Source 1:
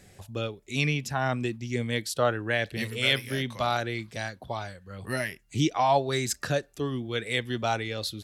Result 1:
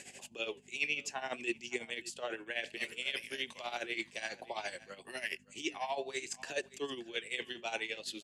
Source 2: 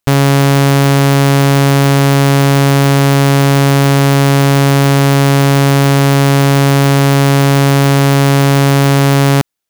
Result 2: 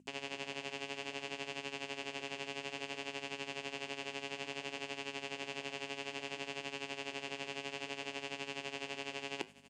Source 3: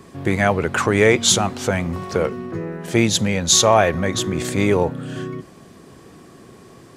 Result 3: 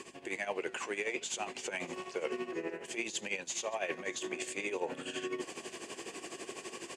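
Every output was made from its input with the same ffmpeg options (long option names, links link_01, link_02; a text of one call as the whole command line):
ffmpeg -i in.wav -filter_complex "[0:a]aemphasis=mode=production:type=riaa,acontrast=30,alimiter=limit=-6dB:level=0:latency=1:release=36,areverse,acompressor=threshold=-34dB:ratio=5,areverse,aeval=exprs='val(0)+0.00501*(sin(2*PI*50*n/s)+sin(2*PI*2*50*n/s)/2+sin(2*PI*3*50*n/s)/3+sin(2*PI*4*50*n/s)/4+sin(2*PI*5*50*n/s)/5)':channel_layout=same,tremolo=f=12:d=0.74,flanger=delay=0.7:depth=9:regen=-80:speed=0.59:shape=sinusoidal,highpass=310,equalizer=frequency=360:width_type=q:width=4:gain=5,equalizer=frequency=1300:width_type=q:width=4:gain=-9,equalizer=frequency=2700:width_type=q:width=4:gain=8,equalizer=frequency=3900:width_type=q:width=4:gain=-8,equalizer=frequency=5600:width_type=q:width=4:gain=-7,lowpass=frequency=7200:width=0.5412,lowpass=frequency=7200:width=1.3066,asplit=2[link_01][link_02];[link_02]aecho=0:1:573:0.112[link_03];[link_01][link_03]amix=inputs=2:normalize=0,volume=5.5dB" out.wav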